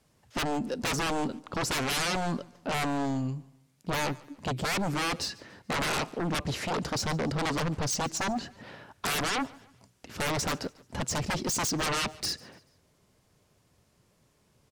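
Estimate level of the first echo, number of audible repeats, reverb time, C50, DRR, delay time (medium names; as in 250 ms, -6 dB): -23.0 dB, 2, no reverb, no reverb, no reverb, 144 ms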